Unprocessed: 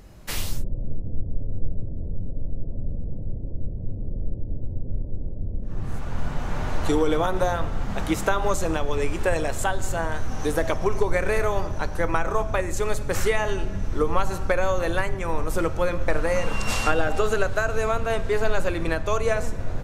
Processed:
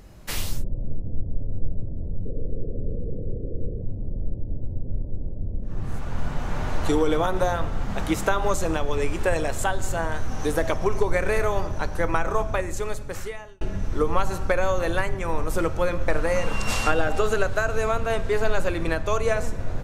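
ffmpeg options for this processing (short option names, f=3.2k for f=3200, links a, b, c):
-filter_complex "[0:a]asettb=1/sr,asplit=3[a][b][c];[a]atrim=end=2.254[d];[b]atrim=start=2.25:end=3.82,asetpts=PTS-STARTPTS,afade=t=in:d=0.004:c=qsin,afade=t=out:st=1.566:d=0.004:c=qsin,lowpass=f=460:t=q:w=4.8[e];[c]atrim=start=3.816[f];[d][e]acrossfade=d=0.004:c1=hsin:c2=qsin[g];[g][f]acrossfade=d=0.004:c1=qsin:c2=hsin,asplit=2[h][i];[h]atrim=end=13.61,asetpts=PTS-STARTPTS,afade=t=out:st=12.43:d=1.18[j];[i]atrim=start=13.61,asetpts=PTS-STARTPTS,afade=t=in:d=0.004:c=hsin[k];[j][k]concat=n=2:v=0:a=1"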